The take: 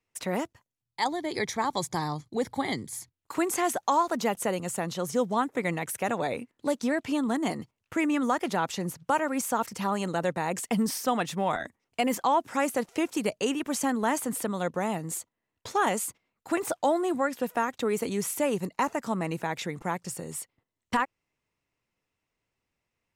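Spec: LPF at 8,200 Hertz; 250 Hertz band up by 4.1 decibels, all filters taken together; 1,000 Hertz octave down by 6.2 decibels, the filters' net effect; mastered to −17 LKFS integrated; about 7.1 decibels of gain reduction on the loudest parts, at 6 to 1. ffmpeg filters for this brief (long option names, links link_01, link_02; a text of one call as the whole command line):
ffmpeg -i in.wav -af "lowpass=8200,equalizer=frequency=250:width_type=o:gain=5.5,equalizer=frequency=1000:width_type=o:gain=-8.5,acompressor=threshold=-27dB:ratio=6,volume=16dB" out.wav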